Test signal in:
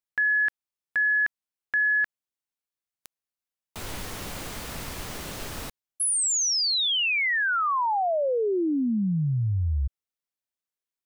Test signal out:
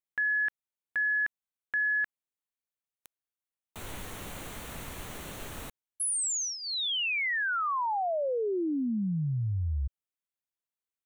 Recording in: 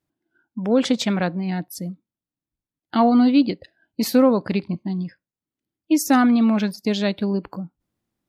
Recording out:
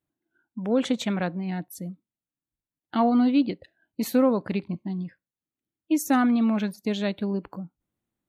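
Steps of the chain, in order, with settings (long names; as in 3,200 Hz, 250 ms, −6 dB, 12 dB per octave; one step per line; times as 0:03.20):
parametric band 5,000 Hz −12.5 dB 0.29 octaves
level −5 dB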